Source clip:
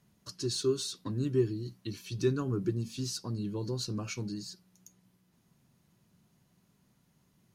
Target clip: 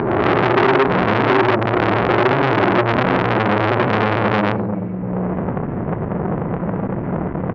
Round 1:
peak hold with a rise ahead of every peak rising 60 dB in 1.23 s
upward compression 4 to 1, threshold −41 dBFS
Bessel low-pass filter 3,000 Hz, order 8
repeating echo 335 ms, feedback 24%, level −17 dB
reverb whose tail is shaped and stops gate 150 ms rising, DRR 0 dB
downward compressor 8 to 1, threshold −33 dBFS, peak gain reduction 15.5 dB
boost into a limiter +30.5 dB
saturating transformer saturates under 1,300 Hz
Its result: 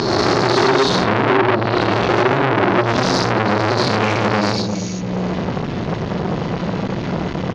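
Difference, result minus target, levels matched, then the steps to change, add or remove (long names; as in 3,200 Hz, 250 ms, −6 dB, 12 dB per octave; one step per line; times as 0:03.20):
4,000 Hz band +7.0 dB
change: Bessel low-pass filter 1,100 Hz, order 8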